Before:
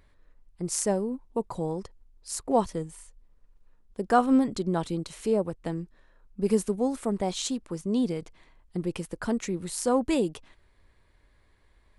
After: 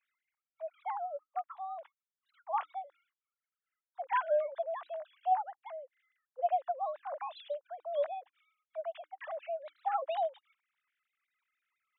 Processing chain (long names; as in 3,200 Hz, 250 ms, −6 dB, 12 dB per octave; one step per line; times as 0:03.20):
three sine waves on the formant tracks
frequency shifter +300 Hz
level −8.5 dB